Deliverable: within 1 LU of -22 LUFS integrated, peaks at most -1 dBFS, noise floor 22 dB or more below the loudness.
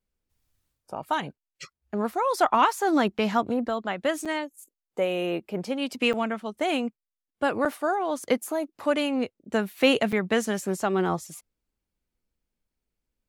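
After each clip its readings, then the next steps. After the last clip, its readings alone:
dropouts 5; longest dropout 6.0 ms; loudness -26.5 LUFS; peak -6.5 dBFS; loudness target -22.0 LUFS
-> interpolate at 3.18/4.25/6.13/7.65/10.12, 6 ms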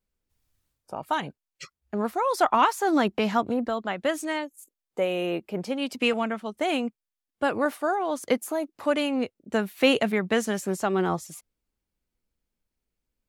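dropouts 0; loudness -26.5 LUFS; peak -6.5 dBFS; loudness target -22.0 LUFS
-> gain +4.5 dB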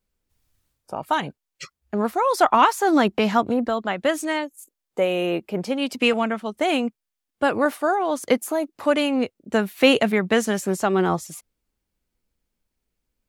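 loudness -22.0 LUFS; peak -2.0 dBFS; noise floor -83 dBFS

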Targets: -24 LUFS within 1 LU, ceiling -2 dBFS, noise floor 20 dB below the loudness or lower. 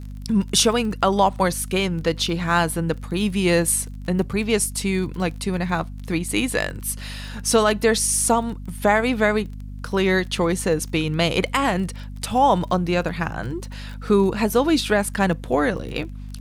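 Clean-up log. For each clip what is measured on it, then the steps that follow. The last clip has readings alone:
ticks 26/s; hum 50 Hz; harmonics up to 250 Hz; hum level -31 dBFS; loudness -21.5 LUFS; peak -5.5 dBFS; loudness target -24.0 LUFS
-> de-click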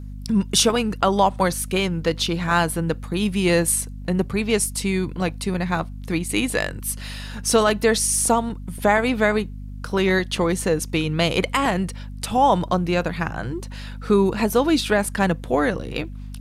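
ticks 0.12/s; hum 50 Hz; harmonics up to 250 Hz; hum level -32 dBFS
-> notches 50/100/150/200/250 Hz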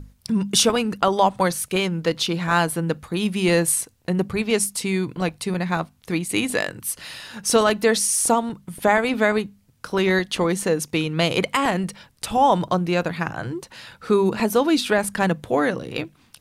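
hum none; loudness -21.5 LUFS; peak -5.5 dBFS; loudness target -24.0 LUFS
-> gain -2.5 dB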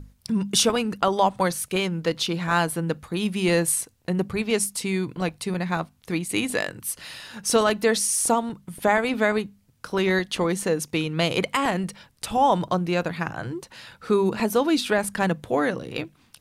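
loudness -24.0 LUFS; peak -8.0 dBFS; noise floor -61 dBFS

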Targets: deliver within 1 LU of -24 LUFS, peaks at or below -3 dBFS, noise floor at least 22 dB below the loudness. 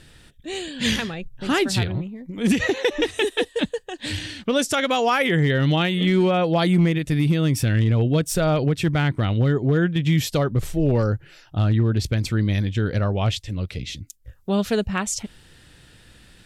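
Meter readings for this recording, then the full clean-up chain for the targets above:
clipped 0.3%; flat tops at -11.0 dBFS; loudness -22.0 LUFS; peak -11.0 dBFS; loudness target -24.0 LUFS
-> clip repair -11 dBFS; gain -2 dB

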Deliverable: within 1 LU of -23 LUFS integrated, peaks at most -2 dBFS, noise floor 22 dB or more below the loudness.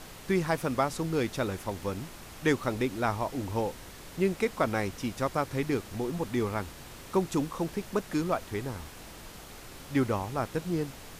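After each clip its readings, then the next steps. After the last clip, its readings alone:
noise floor -47 dBFS; noise floor target -53 dBFS; loudness -31.0 LUFS; peak -13.0 dBFS; loudness target -23.0 LUFS
-> noise print and reduce 6 dB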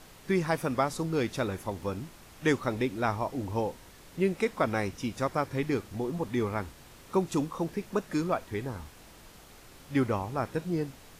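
noise floor -53 dBFS; noise floor target -54 dBFS
-> noise print and reduce 6 dB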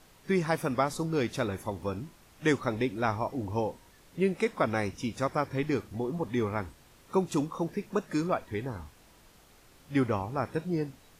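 noise floor -58 dBFS; loudness -31.5 LUFS; peak -13.0 dBFS; loudness target -23.0 LUFS
-> gain +8.5 dB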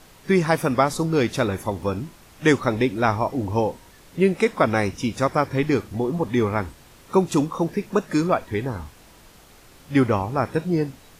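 loudness -23.0 LUFS; peak -4.5 dBFS; noise floor -50 dBFS

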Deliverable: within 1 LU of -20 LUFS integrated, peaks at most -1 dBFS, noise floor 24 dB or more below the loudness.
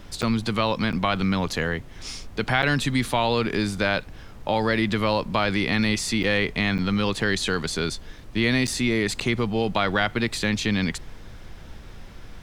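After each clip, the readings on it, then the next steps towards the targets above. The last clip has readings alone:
dropouts 7; longest dropout 7.9 ms; noise floor -42 dBFS; noise floor target -48 dBFS; loudness -24.0 LUFS; peak -6.0 dBFS; loudness target -20.0 LUFS
-> interpolate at 0.22/0.92/2.62/6.23/6.78/8.67/9.2, 7.9 ms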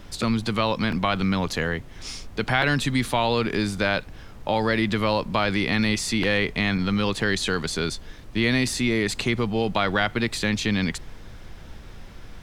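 dropouts 0; noise floor -42 dBFS; noise floor target -48 dBFS
-> noise print and reduce 6 dB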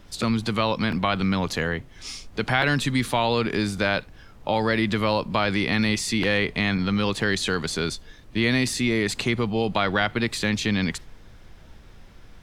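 noise floor -47 dBFS; noise floor target -48 dBFS
-> noise print and reduce 6 dB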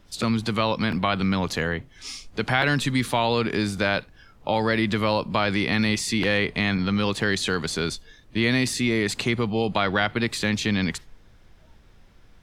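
noise floor -53 dBFS; loudness -24.0 LUFS; peak -6.0 dBFS; loudness target -20.0 LUFS
-> gain +4 dB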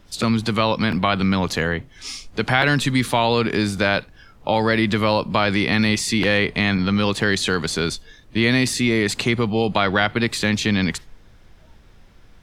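loudness -20.0 LUFS; peak -2.0 dBFS; noise floor -49 dBFS

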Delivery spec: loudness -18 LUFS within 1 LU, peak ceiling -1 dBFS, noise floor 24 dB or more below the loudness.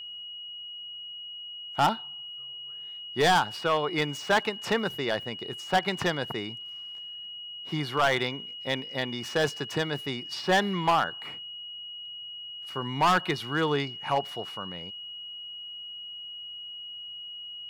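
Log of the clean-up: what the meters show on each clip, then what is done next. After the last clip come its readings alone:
clipped 0.8%; flat tops at -17.5 dBFS; steady tone 2900 Hz; tone level -38 dBFS; loudness -30.0 LUFS; peak -17.5 dBFS; loudness target -18.0 LUFS
-> clip repair -17.5 dBFS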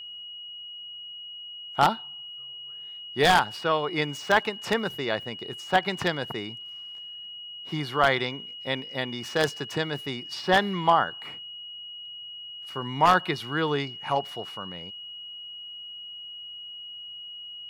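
clipped 0.0%; steady tone 2900 Hz; tone level -38 dBFS
-> notch 2900 Hz, Q 30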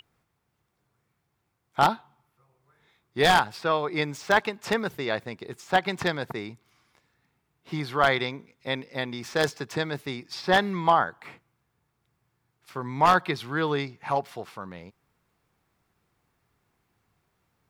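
steady tone none; loudness -26.0 LUFS; peak -8.0 dBFS; loudness target -18.0 LUFS
-> gain +8 dB; limiter -1 dBFS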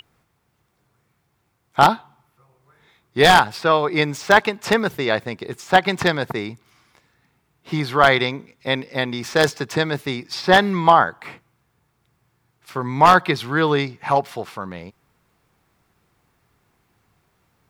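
loudness -18.5 LUFS; peak -1.0 dBFS; noise floor -68 dBFS

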